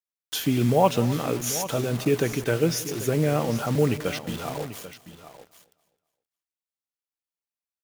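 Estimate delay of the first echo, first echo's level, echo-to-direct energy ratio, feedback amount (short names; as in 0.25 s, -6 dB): 0.182 s, -20.0 dB, -12.0 dB, no steady repeat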